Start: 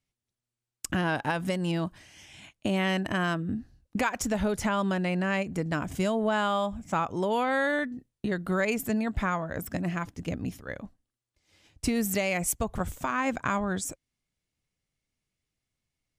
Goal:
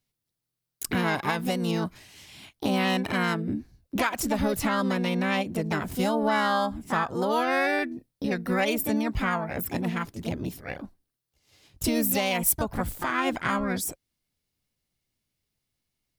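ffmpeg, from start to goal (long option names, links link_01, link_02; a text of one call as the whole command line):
ffmpeg -i in.wav -filter_complex "[0:a]aexciter=amount=1.6:drive=2.8:freq=3800,asplit=2[link_01][link_02];[link_02]asetrate=58866,aresample=44100,atempo=0.749154,volume=-3dB[link_03];[link_01][link_03]amix=inputs=2:normalize=0" out.wav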